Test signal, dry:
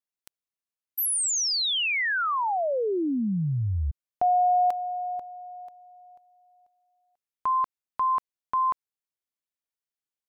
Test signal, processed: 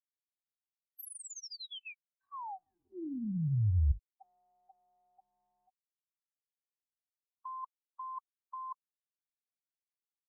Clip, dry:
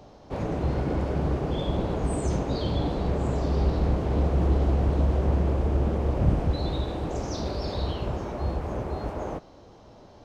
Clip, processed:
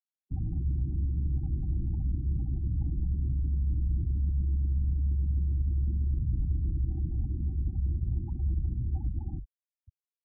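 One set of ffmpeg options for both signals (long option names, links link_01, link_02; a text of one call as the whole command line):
ffmpeg -i in.wav -filter_complex "[0:a]bandreject=frequency=50:width_type=h:width=6,bandreject=frequency=100:width_type=h:width=6,bandreject=frequency=150:width_type=h:width=6,bandreject=frequency=200:width_type=h:width=6,bandreject=frequency=250:width_type=h:width=6,bandreject=frequency=300:width_type=h:width=6,bandreject=frequency=350:width_type=h:width=6,areverse,acompressor=threshold=-34dB:ratio=16:attack=41:release=30:knee=1:detection=peak,areverse,asuperstop=centerf=1800:order=12:qfactor=1.6,bass=frequency=250:gain=9,treble=frequency=4000:gain=-2,afftfilt=real='re*gte(hypot(re,im),0.0891)':imag='im*gte(hypot(re,im),0.0891)':win_size=1024:overlap=0.75,lowshelf=frequency=230:gain=11,acrossover=split=130|470[link_01][link_02][link_03];[link_01]acompressor=threshold=-37dB:ratio=1.5[link_04];[link_02]acompressor=threshold=-44dB:ratio=3[link_05];[link_03]acompressor=threshold=-42dB:ratio=2[link_06];[link_04][link_05][link_06]amix=inputs=3:normalize=0,afftfilt=real='re*eq(mod(floor(b*sr/1024/380),2),0)':imag='im*eq(mod(floor(b*sr/1024/380),2),0)':win_size=1024:overlap=0.75,volume=-4.5dB" out.wav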